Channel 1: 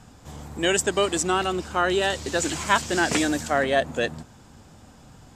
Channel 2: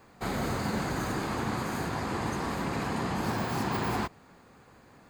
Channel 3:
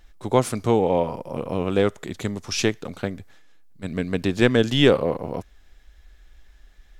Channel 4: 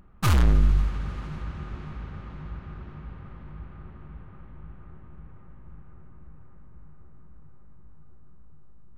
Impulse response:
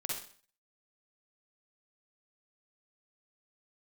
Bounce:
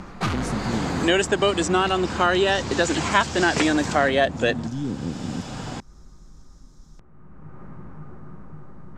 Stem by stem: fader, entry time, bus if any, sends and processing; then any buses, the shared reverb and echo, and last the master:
+3.0 dB, 0.45 s, no send, none
-9.5 dB, 0.00 s, no send, level rider gain up to 5 dB
-6.5 dB, 0.00 s, no send, Chebyshev band-stop 270–5700 Hz, order 3; peak limiter -19.5 dBFS, peak gain reduction 9.5 dB
0.0 dB, 0.00 s, no send, auto duck -20 dB, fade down 0.70 s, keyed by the third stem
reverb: none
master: low-pass 5.8 kHz 12 dB/octave; three bands compressed up and down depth 70%

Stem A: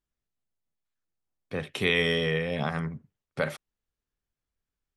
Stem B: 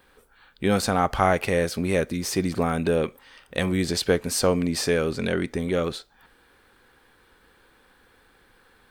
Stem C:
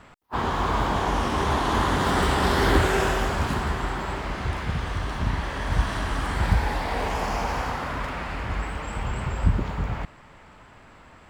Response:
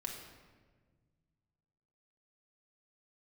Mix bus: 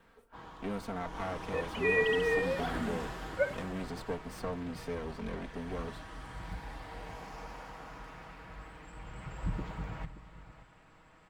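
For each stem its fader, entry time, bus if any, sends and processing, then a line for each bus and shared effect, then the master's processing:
-3.5 dB, 0.00 s, no send, no echo send, formants replaced by sine waves
-13.0 dB, 0.00 s, no send, no echo send, comb filter that takes the minimum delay 4.4 ms; treble shelf 2.8 kHz -11.5 dB; three bands compressed up and down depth 40%
0.80 s -22 dB -> 1.19 s -13 dB, 0.00 s, send -13.5 dB, echo send -14 dB, comb 6.3 ms, depth 52%; auto duck -11 dB, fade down 1.05 s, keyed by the second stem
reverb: on, RT60 1.5 s, pre-delay 4 ms
echo: delay 576 ms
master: none

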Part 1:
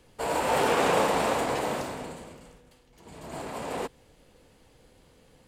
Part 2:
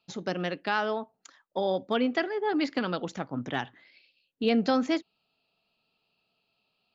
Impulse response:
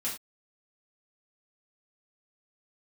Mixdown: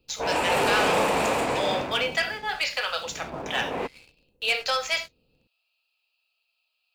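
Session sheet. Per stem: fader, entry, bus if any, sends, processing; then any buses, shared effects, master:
-5.0 dB, 0.00 s, no send, level-controlled noise filter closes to 470 Hz, open at -22.5 dBFS
-9.0 dB, 0.00 s, send -3.5 dB, steep high-pass 450 Hz 72 dB/octave; tilt EQ +4 dB/octave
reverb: on, pre-delay 3 ms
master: peaking EQ 2.5 kHz +7 dB 0.28 oct; waveshaping leveller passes 2

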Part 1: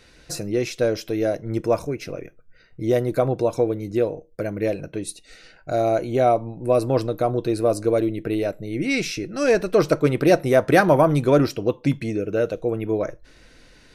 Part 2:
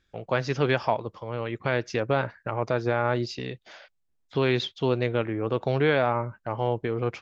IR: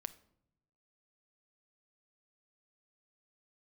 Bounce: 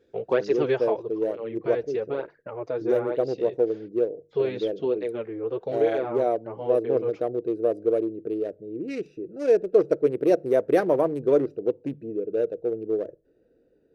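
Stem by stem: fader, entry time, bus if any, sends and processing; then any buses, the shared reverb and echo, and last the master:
-13.5 dB, 0.00 s, send -19.5 dB, local Wiener filter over 41 samples; hum notches 50/100/150 Hz
0.0 dB, 0.00 s, no send, cancelling through-zero flanger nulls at 1.1 Hz, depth 5.5 ms; auto duck -10 dB, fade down 1.35 s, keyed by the first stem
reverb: on, RT60 0.80 s, pre-delay 6 ms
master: high-pass 150 Hz 6 dB/octave; peaking EQ 430 Hz +15 dB 1 oct

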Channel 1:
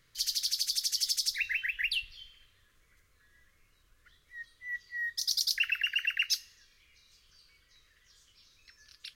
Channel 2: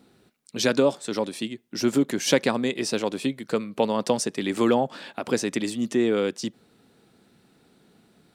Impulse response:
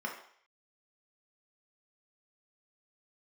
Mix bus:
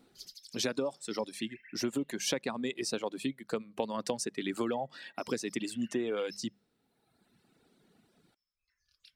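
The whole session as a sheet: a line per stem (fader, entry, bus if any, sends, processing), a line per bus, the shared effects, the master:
-12.5 dB, 0.00 s, send -8 dB, auto duck -20 dB, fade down 1.75 s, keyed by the second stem
-5.5 dB, 0.00 s, no send, hum notches 50/100/150/200 Hz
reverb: on, RT60 0.60 s, pre-delay 3 ms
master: reverb removal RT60 1.3 s; compression 10:1, threshold -28 dBFS, peak gain reduction 9.5 dB

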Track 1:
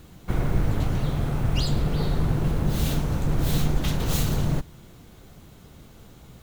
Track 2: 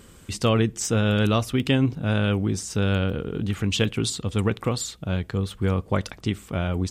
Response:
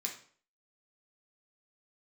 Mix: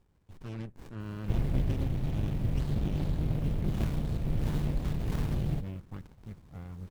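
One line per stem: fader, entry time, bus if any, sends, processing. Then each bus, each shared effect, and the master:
+1.5 dB, 1.00 s, no send, auto duck -7 dB, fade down 1.80 s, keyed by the second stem
-16.5 dB, 0.00 s, no send, none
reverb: none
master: treble shelf 4.7 kHz +5.5 dB; touch-sensitive phaser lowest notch 270 Hz, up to 1.2 kHz, full sweep at -29.5 dBFS; sliding maximum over 65 samples

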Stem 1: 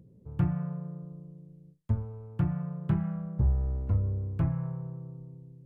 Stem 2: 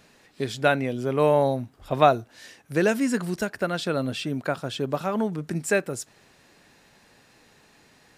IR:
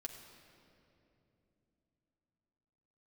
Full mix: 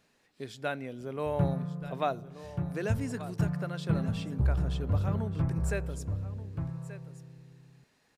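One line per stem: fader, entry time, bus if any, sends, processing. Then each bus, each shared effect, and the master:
-1.5 dB, 1.00 s, no send, echo send -5.5 dB, none
-13.5 dB, 0.00 s, send -14.5 dB, echo send -14 dB, none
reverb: on, RT60 3.0 s, pre-delay 4 ms
echo: delay 1181 ms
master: none

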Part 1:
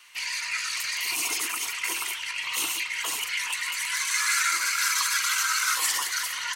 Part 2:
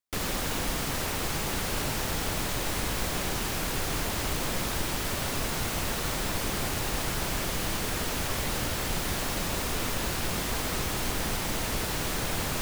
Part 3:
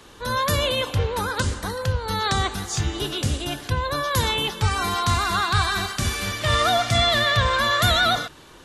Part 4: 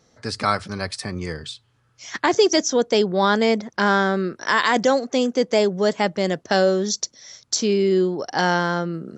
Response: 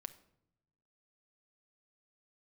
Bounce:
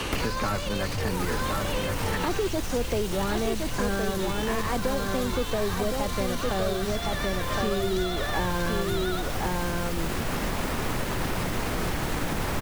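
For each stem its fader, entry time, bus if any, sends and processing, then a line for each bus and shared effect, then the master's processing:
-3.0 dB, 0.00 s, bus A, no send, no echo send, inverse Chebyshev high-pass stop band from 480 Hz, stop band 80 dB; compressor with a negative ratio -37 dBFS
-6.5 dB, 0.00 s, bus A, no send, echo send -3.5 dB, bass shelf 99 Hz +12 dB
-9.0 dB, 0.00 s, bus A, no send, echo send -7.5 dB, none
-8.5 dB, 0.00 s, no bus, no send, echo send -4.5 dB, slew-rate limiter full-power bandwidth 93 Hz
bus A: 0.0 dB, peak limiter -27.5 dBFS, peak gain reduction 14 dB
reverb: none
echo: delay 1065 ms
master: three bands compressed up and down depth 100%

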